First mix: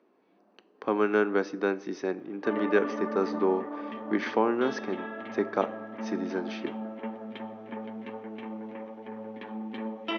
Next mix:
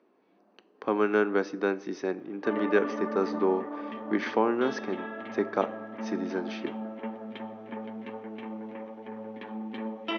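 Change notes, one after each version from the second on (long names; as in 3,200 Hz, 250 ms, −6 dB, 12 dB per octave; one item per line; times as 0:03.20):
nothing changed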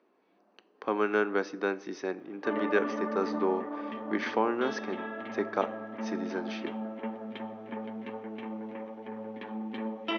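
speech: add low-shelf EQ 430 Hz −6 dB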